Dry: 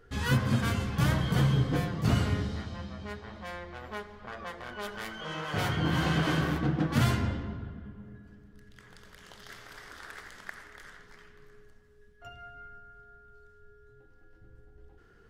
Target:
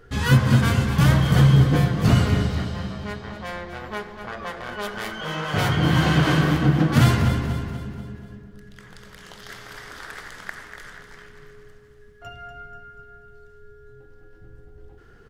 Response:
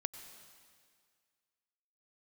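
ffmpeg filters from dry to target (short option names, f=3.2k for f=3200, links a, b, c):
-filter_complex "[0:a]equalizer=f=140:t=o:w=0.35:g=4.5,asplit=2[a][b];[b]aecho=0:1:242|484|726|968|1210:0.316|0.152|0.0729|0.035|0.0168[c];[a][c]amix=inputs=2:normalize=0,volume=7.5dB"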